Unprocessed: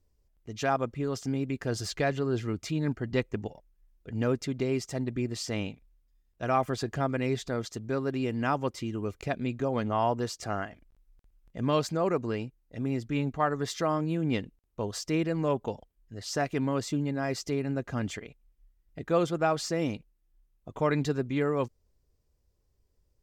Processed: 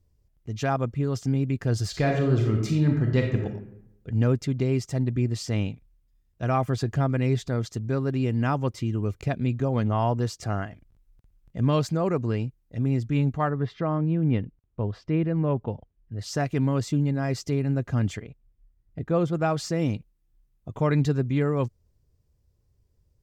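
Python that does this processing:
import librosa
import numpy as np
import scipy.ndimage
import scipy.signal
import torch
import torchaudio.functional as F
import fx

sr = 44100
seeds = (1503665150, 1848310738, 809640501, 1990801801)

y = fx.reverb_throw(x, sr, start_s=1.89, length_s=1.55, rt60_s=0.87, drr_db=1.5)
y = fx.air_absorb(y, sr, metres=380.0, at=(13.5, 16.19))
y = fx.high_shelf(y, sr, hz=2100.0, db=-8.5, at=(18.22, 19.33))
y = fx.peak_eq(y, sr, hz=110.0, db=11.0, octaves=1.8)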